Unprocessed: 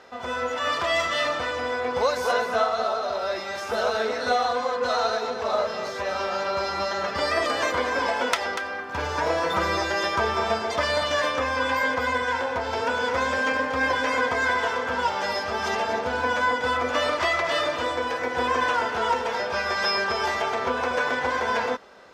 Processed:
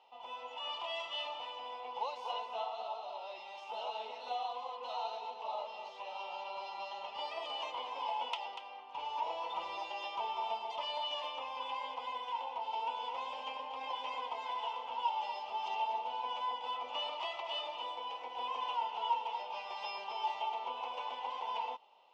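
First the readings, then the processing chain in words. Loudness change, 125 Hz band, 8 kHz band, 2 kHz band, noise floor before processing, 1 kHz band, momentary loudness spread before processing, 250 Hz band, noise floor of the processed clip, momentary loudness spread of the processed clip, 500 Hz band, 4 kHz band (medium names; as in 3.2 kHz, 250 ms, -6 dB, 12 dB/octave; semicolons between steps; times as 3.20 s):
-14.5 dB, under -35 dB, under -25 dB, -23.5 dB, -32 dBFS, -11.0 dB, 4 LU, -29.5 dB, -49 dBFS, 7 LU, -20.0 dB, -10.5 dB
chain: two resonant band-passes 1.6 kHz, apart 1.7 oct; trim -4.5 dB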